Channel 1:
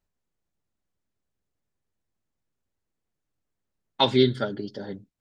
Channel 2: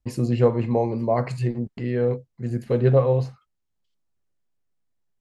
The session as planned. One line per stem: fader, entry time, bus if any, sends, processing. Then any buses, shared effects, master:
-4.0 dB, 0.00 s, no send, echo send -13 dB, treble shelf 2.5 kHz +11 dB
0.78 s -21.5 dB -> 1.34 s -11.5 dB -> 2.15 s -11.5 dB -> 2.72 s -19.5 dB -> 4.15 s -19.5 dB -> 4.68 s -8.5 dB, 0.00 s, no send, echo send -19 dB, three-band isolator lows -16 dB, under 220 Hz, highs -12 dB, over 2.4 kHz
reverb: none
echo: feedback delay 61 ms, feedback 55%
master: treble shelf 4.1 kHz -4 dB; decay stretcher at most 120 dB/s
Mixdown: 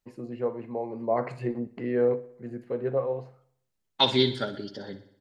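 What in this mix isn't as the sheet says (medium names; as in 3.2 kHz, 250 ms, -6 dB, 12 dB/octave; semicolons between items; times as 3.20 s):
stem 2 -21.5 dB -> -9.5 dB; master: missing decay stretcher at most 120 dB/s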